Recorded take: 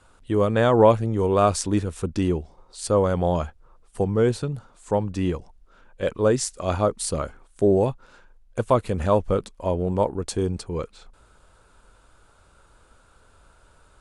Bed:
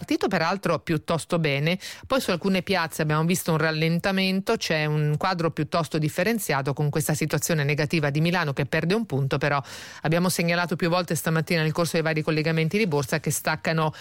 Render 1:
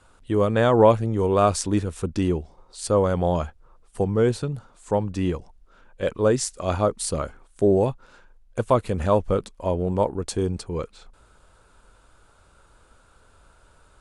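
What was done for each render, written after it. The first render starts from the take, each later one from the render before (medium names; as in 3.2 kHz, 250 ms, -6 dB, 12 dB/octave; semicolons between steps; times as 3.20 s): no audible change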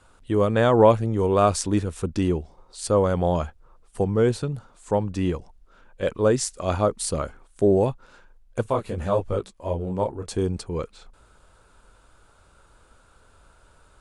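8.64–10.30 s: detune thickener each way 30 cents -> 15 cents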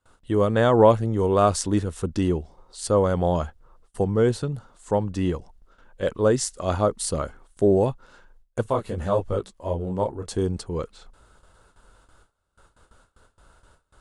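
band-stop 2.4 kHz, Q 9.7; gate with hold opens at -45 dBFS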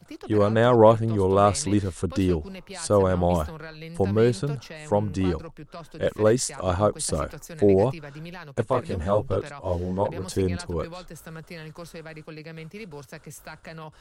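add bed -16.5 dB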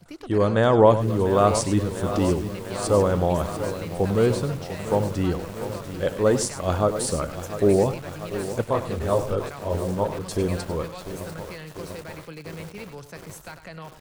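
delay 99 ms -12.5 dB; bit-crushed delay 695 ms, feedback 80%, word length 6-bit, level -11.5 dB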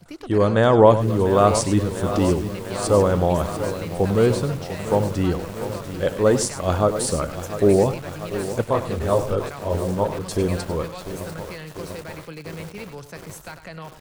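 trim +2.5 dB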